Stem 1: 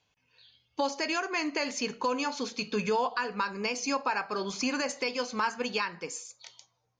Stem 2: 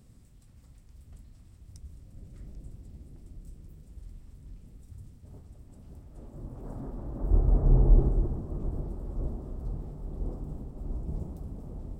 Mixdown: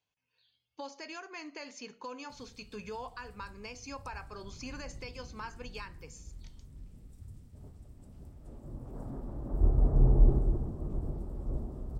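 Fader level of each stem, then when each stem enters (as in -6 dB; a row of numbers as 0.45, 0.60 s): -13.5, -2.0 dB; 0.00, 2.30 s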